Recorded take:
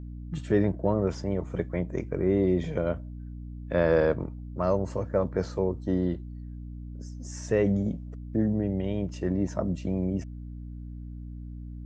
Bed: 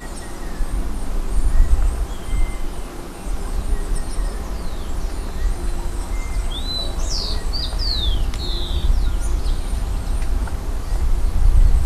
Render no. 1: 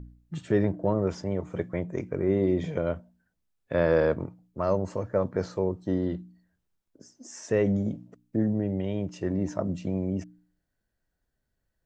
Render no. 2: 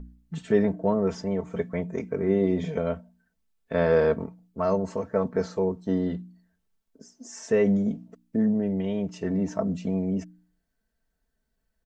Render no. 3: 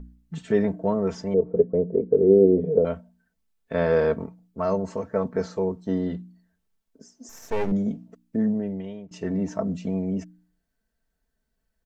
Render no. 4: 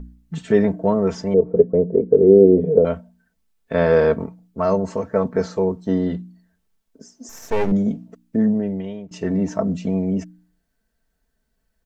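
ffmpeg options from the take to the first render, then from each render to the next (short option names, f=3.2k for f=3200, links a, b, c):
-af "bandreject=f=60:t=h:w=4,bandreject=f=120:t=h:w=4,bandreject=f=180:t=h:w=4,bandreject=f=240:t=h:w=4,bandreject=f=300:t=h:w=4"
-af "aecho=1:1:4.5:0.71"
-filter_complex "[0:a]asettb=1/sr,asplit=3[a][b][c];[a]atrim=end=1.344[d];[b]atrim=start=1.34:end=2.85,asetpts=PTS-STARTPTS,afade=t=in:d=0.004:c=qsin,afade=t=out:st=1.506:d=0.004:c=qsin,lowpass=f=460:t=q:w=4.1[e];[c]atrim=start=2.846[f];[d][e]acrossfade=d=0.004:c1=hsin:c2=qsin[g];[g][f]acrossfade=d=0.004:c1=qsin:c2=hsin,asettb=1/sr,asplit=3[h][i][j];[h]atrim=end=7.294[k];[i]atrim=start=7.29:end=7.72,asetpts=PTS-STARTPTS,afade=t=in:d=0.004:c=qsin,afade=t=out:st=0.426:d=0.004:c=qsin,aeval=exprs='max(val(0),0)':c=same[l];[j]atrim=start=7.716[m];[k][l]acrossfade=d=0.004:c1=hsin:c2=qsin[n];[n][m]acrossfade=d=0.004:c1=qsin:c2=hsin,asplit=2[o][p];[o]atrim=end=9.11,asetpts=PTS-STARTPTS,afade=t=out:st=8.48:d=0.63:silence=0.11885[q];[p]atrim=start=9.11,asetpts=PTS-STARTPTS,afade=t=in:d=0.004:c=hsin:silence=0.11885[r];[q][r]concat=n=2:v=0:a=1"
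-af "volume=5.5dB,alimiter=limit=-1dB:level=0:latency=1"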